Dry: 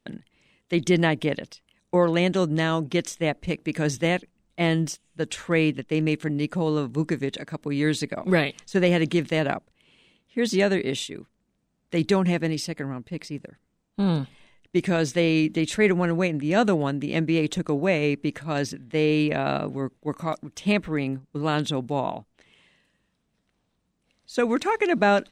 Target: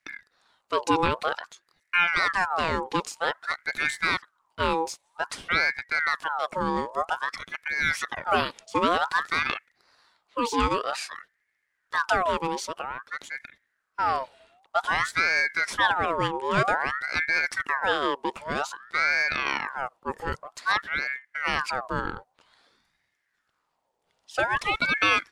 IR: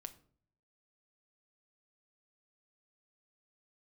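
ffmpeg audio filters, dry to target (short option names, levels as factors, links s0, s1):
-af "aeval=exprs='val(0)*sin(2*PI*1300*n/s+1300*0.5/0.52*sin(2*PI*0.52*n/s))':c=same"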